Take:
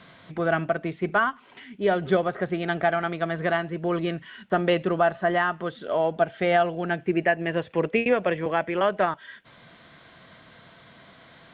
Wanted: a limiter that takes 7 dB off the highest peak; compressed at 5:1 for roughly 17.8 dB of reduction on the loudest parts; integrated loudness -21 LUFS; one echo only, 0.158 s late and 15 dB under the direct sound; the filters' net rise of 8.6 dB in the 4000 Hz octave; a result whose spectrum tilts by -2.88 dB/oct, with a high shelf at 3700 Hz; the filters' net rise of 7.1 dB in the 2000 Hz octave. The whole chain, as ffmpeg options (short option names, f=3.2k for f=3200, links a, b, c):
-af "equalizer=f=2k:t=o:g=7,highshelf=f=3.7k:g=5.5,equalizer=f=4k:t=o:g=5.5,acompressor=threshold=-35dB:ratio=5,alimiter=level_in=2.5dB:limit=-24dB:level=0:latency=1,volume=-2.5dB,aecho=1:1:158:0.178,volume=18.5dB"